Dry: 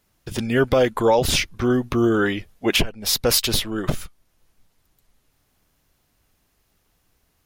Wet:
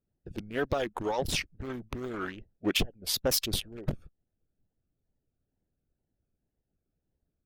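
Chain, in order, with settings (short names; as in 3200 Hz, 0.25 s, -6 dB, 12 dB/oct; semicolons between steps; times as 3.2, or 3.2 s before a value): Wiener smoothing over 41 samples; harmonic-percussive split harmonic -13 dB; wow and flutter 150 cents; gain -7 dB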